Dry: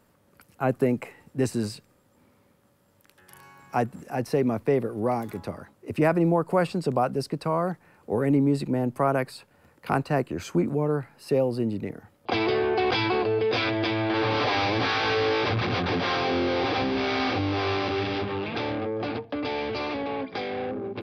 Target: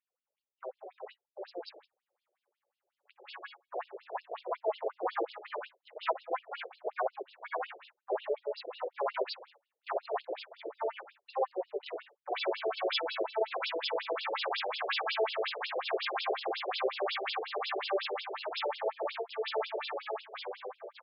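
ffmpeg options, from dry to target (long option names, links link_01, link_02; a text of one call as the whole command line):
ffmpeg -i in.wav -filter_complex "[0:a]areverse,acompressor=threshold=-41dB:ratio=4,areverse,flanger=delay=5.4:depth=8.5:regen=-12:speed=0.23:shape=triangular,asplit=4[link_01][link_02][link_03][link_04];[link_02]asetrate=37084,aresample=44100,atempo=1.18921,volume=-11dB[link_05];[link_03]asetrate=66075,aresample=44100,atempo=0.66742,volume=-2dB[link_06];[link_04]asetrate=88200,aresample=44100,atempo=0.5,volume=-8dB[link_07];[link_01][link_05][link_06][link_07]amix=inputs=4:normalize=0,dynaudnorm=framelen=760:gausssize=5:maxgain=12dB,agate=range=-26dB:threshold=-45dB:ratio=16:detection=peak,equalizer=frequency=7800:width=2.6:gain=9.5,afftfilt=real='re*between(b*sr/1024,480*pow(3900/480,0.5+0.5*sin(2*PI*5.5*pts/sr))/1.41,480*pow(3900/480,0.5+0.5*sin(2*PI*5.5*pts/sr))*1.41)':imag='im*between(b*sr/1024,480*pow(3900/480,0.5+0.5*sin(2*PI*5.5*pts/sr))/1.41,480*pow(3900/480,0.5+0.5*sin(2*PI*5.5*pts/sr))*1.41)':win_size=1024:overlap=0.75,volume=2dB" out.wav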